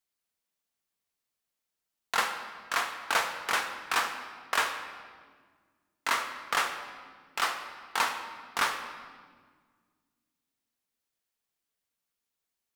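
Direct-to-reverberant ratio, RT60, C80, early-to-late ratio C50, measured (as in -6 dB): 5.5 dB, 1.6 s, 9.5 dB, 8.0 dB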